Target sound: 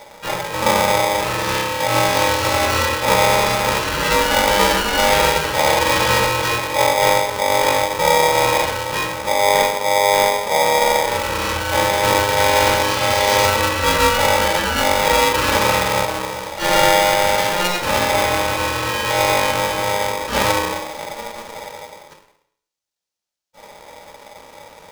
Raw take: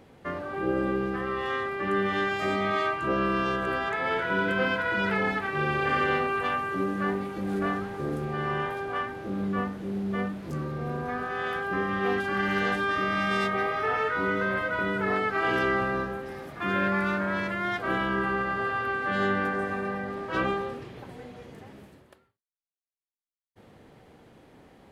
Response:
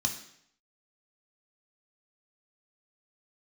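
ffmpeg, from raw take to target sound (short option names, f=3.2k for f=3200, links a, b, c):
-filter_complex "[0:a]asplit=3[a][b][c];[b]asetrate=22050,aresample=44100,atempo=2,volume=0dB[d];[c]asetrate=66075,aresample=44100,atempo=0.66742,volume=-1dB[e];[a][d][e]amix=inputs=3:normalize=0,asplit=2[f][g];[1:a]atrim=start_sample=2205[h];[g][h]afir=irnorm=-1:irlink=0,volume=-2dB[i];[f][i]amix=inputs=2:normalize=0,aeval=exprs='val(0)*sgn(sin(2*PI*710*n/s))':c=same,volume=2.5dB"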